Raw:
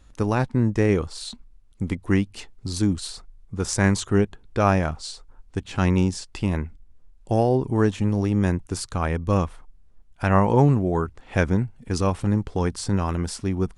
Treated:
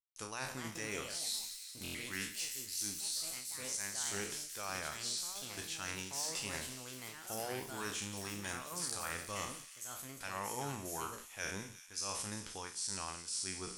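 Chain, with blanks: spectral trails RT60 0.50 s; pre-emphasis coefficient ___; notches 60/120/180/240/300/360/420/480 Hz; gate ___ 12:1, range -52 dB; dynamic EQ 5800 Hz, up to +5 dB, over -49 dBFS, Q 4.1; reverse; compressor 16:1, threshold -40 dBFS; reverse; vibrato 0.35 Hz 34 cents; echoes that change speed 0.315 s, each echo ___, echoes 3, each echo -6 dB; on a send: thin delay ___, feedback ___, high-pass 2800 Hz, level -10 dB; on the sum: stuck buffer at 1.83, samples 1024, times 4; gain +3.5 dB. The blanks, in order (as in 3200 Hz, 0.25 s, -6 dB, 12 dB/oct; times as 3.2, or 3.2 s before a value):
0.97, -60 dBFS, +4 st, 0.176 s, 74%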